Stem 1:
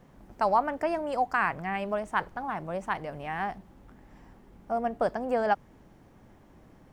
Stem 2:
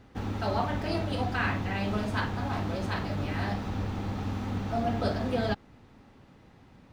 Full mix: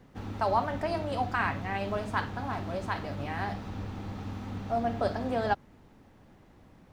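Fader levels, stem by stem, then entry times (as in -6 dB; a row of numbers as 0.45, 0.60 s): -3.5, -5.5 dB; 0.00, 0.00 s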